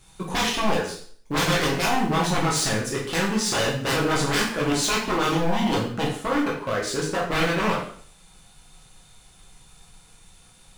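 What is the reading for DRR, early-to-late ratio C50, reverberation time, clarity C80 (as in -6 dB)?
-4.5 dB, 4.5 dB, 0.50 s, 9.0 dB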